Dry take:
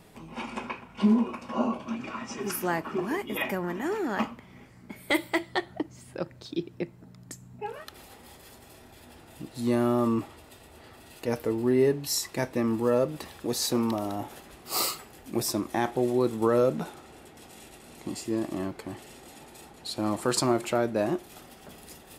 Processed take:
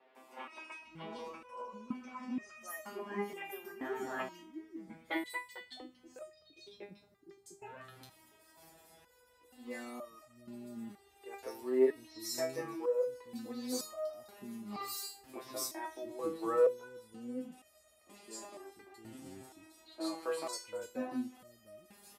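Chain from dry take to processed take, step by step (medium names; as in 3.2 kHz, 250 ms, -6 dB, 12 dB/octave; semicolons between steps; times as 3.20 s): high-pass 51 Hz; peaking EQ 140 Hz -7.5 dB 0.66 oct; three bands offset in time mids, highs, lows 150/700 ms, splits 310/3300 Hz; resonator arpeggio 2.1 Hz 130–620 Hz; trim +3.5 dB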